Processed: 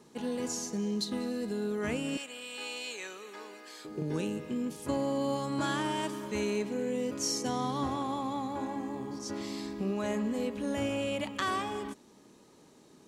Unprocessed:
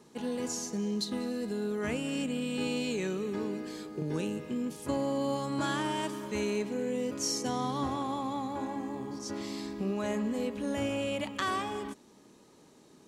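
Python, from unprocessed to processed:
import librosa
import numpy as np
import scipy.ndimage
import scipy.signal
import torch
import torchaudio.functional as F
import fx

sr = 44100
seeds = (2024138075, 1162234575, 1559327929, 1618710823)

y = fx.highpass(x, sr, hz=840.0, slope=12, at=(2.17, 3.85))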